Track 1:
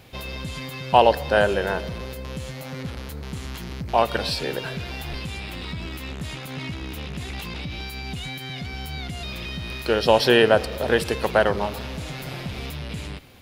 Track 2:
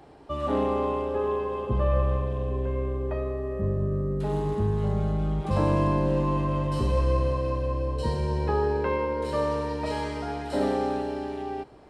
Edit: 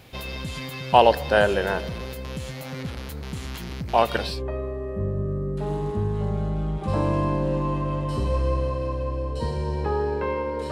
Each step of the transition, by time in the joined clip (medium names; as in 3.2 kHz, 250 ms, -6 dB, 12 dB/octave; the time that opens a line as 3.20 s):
track 1
4.30 s: go over to track 2 from 2.93 s, crossfade 0.26 s